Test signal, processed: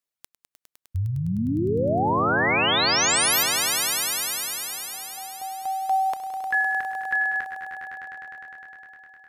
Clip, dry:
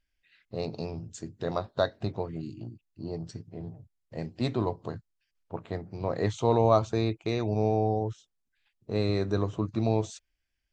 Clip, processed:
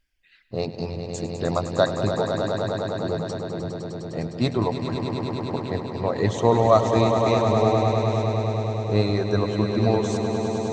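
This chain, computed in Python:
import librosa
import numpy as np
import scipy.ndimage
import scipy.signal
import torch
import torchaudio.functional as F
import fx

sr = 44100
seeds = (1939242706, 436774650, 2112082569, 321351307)

y = fx.dereverb_blind(x, sr, rt60_s=1.6)
y = fx.echo_swell(y, sr, ms=102, loudest=5, wet_db=-9.0)
y = F.gain(torch.from_numpy(y), 6.5).numpy()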